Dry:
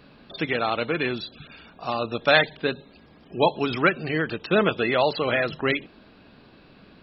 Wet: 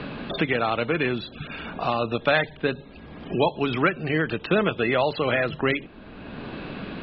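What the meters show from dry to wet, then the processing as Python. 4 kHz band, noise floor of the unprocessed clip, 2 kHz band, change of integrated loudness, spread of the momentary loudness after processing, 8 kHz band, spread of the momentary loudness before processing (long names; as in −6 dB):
−3.0 dB, −53 dBFS, −1.0 dB, −1.0 dB, 14 LU, can't be measured, 14 LU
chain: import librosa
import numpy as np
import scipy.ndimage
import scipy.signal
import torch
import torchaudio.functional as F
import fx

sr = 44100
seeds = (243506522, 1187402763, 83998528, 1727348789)

y = scipy.signal.sosfilt(scipy.signal.butter(4, 3600.0, 'lowpass', fs=sr, output='sos'), x)
y = fx.low_shelf(y, sr, hz=82.0, db=9.5)
y = fx.band_squash(y, sr, depth_pct=70)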